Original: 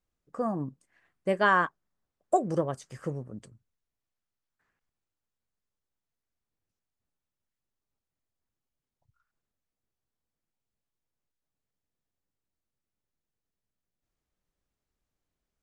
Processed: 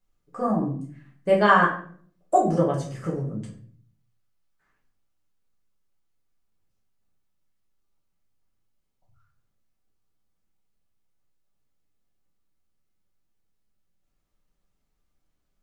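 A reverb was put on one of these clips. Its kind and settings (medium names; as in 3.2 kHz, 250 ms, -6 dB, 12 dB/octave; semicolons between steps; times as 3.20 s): simulated room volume 56 m³, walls mixed, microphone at 1.1 m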